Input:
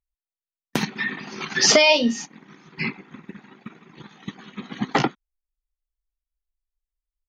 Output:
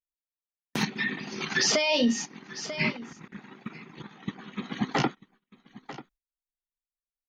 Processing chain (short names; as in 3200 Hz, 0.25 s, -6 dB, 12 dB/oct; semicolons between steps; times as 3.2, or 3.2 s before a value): 0.88–1.47 bell 1200 Hz -6 dB 1.4 oct; 2.95–3.35 negative-ratio compressor -47 dBFS, ratio -0.5; 4.02–4.52 high shelf 4000 Hz -10 dB; echo 0.942 s -21 dB; limiter -15 dBFS, peak gain reduction 11 dB; gate -60 dBFS, range -20 dB